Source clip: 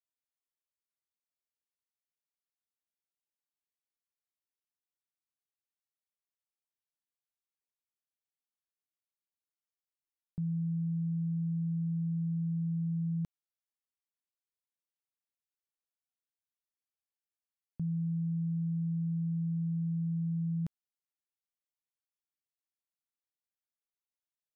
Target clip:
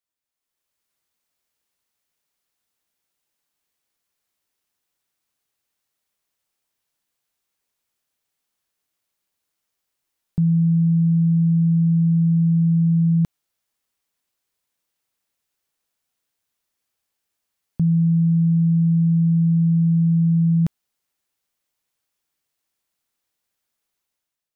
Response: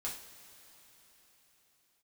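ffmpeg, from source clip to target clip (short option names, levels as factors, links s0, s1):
-af "dynaudnorm=f=160:g=7:m=3.35,volume=1.88"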